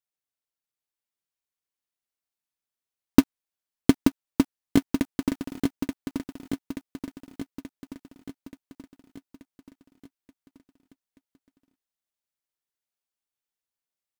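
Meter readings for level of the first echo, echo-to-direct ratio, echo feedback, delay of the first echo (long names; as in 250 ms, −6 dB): −5.5 dB, −4.0 dB, 56%, 880 ms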